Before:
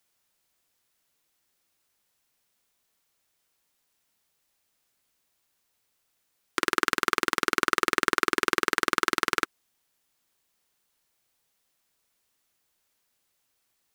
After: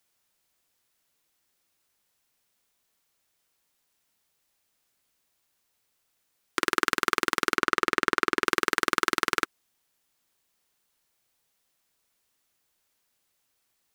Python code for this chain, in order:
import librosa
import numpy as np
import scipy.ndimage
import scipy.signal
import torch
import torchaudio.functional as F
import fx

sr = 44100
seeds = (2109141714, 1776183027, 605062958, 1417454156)

y = fx.high_shelf(x, sr, hz=5700.0, db=-9.0, at=(7.56, 8.45))